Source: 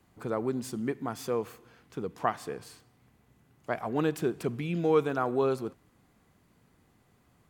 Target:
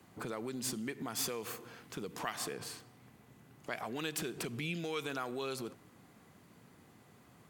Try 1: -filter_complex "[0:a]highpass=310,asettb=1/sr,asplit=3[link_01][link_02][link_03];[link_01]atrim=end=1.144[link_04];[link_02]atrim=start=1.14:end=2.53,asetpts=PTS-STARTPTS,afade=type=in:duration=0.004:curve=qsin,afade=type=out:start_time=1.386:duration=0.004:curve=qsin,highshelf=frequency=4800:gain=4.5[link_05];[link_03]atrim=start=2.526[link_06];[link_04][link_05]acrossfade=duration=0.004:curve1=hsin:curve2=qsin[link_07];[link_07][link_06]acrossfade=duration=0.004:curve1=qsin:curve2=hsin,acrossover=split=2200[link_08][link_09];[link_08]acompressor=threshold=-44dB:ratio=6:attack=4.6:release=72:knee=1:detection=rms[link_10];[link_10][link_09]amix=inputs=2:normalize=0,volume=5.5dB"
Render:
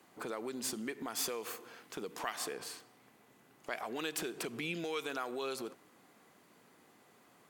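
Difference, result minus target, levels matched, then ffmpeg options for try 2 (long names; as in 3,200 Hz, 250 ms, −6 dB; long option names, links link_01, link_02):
125 Hz band −7.5 dB
-filter_complex "[0:a]highpass=110,asettb=1/sr,asplit=3[link_01][link_02][link_03];[link_01]atrim=end=1.144[link_04];[link_02]atrim=start=1.14:end=2.53,asetpts=PTS-STARTPTS,afade=type=in:duration=0.004:curve=qsin,afade=type=out:start_time=1.386:duration=0.004:curve=qsin,highshelf=frequency=4800:gain=4.5[link_05];[link_03]atrim=start=2.526[link_06];[link_04][link_05]acrossfade=duration=0.004:curve1=hsin:curve2=qsin[link_07];[link_07][link_06]acrossfade=duration=0.004:curve1=qsin:curve2=hsin,acrossover=split=2200[link_08][link_09];[link_08]acompressor=threshold=-44dB:ratio=6:attack=4.6:release=72:knee=1:detection=rms[link_10];[link_10][link_09]amix=inputs=2:normalize=0,volume=5.5dB"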